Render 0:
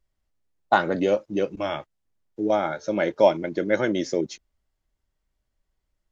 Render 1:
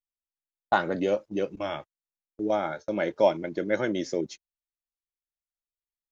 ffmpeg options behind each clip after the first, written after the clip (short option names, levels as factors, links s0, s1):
-af "agate=range=0.0398:threshold=0.0178:ratio=16:detection=peak,volume=0.631"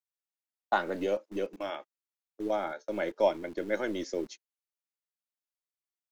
-filter_complex "[0:a]highpass=f=170:w=0.5412,highpass=f=170:w=1.3066,acrossover=split=230|3100[s0][s1][s2];[s0]acrusher=bits=5:dc=4:mix=0:aa=0.000001[s3];[s3][s1][s2]amix=inputs=3:normalize=0,volume=0.631"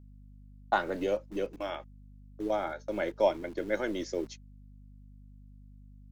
-af "aeval=exprs='val(0)+0.00282*(sin(2*PI*50*n/s)+sin(2*PI*2*50*n/s)/2+sin(2*PI*3*50*n/s)/3+sin(2*PI*4*50*n/s)/4+sin(2*PI*5*50*n/s)/5)':c=same"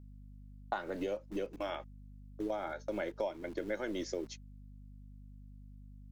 -af "acompressor=threshold=0.0224:ratio=6"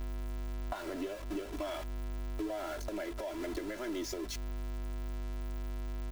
-af "aeval=exprs='val(0)+0.5*0.0168*sgn(val(0))':c=same,acompressor=threshold=0.0112:ratio=4,aecho=1:1:3:0.74"